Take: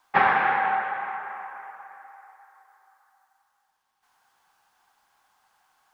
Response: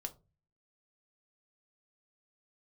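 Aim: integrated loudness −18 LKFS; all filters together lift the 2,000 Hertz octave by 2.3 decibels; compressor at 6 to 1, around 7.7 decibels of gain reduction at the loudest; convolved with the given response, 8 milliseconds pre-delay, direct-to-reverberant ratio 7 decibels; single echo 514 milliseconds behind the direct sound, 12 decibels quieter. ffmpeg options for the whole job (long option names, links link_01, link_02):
-filter_complex "[0:a]equalizer=frequency=2000:width_type=o:gain=3,acompressor=threshold=-22dB:ratio=6,aecho=1:1:514:0.251,asplit=2[link_01][link_02];[1:a]atrim=start_sample=2205,adelay=8[link_03];[link_02][link_03]afir=irnorm=-1:irlink=0,volume=-4.5dB[link_04];[link_01][link_04]amix=inputs=2:normalize=0,volume=9.5dB"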